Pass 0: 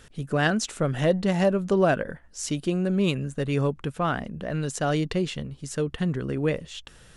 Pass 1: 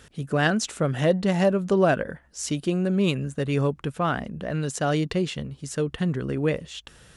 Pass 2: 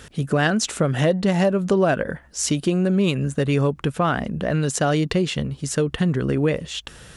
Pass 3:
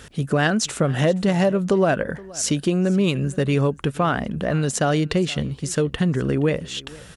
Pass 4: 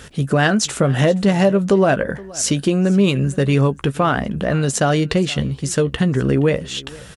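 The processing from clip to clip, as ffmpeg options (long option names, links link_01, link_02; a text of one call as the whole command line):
ffmpeg -i in.wav -af "highpass=41,volume=1dB" out.wav
ffmpeg -i in.wav -af "acompressor=threshold=-26dB:ratio=2.5,volume=8dB" out.wav
ffmpeg -i in.wav -af "aecho=1:1:472:0.0841" out.wav
ffmpeg -i in.wav -filter_complex "[0:a]asplit=2[link_01][link_02];[link_02]adelay=15,volume=-12dB[link_03];[link_01][link_03]amix=inputs=2:normalize=0,volume=3.5dB" out.wav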